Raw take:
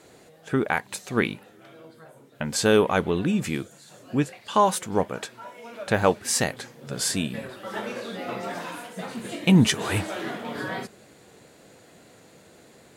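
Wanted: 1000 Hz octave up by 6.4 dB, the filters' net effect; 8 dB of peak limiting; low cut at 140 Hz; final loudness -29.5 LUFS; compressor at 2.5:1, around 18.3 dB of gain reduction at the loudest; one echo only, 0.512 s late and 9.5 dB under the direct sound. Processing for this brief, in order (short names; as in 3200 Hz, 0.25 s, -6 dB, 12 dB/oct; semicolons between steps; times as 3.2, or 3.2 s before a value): HPF 140 Hz; bell 1000 Hz +7.5 dB; compressor 2.5:1, threshold -38 dBFS; limiter -24 dBFS; echo 0.512 s -9.5 dB; gain +8.5 dB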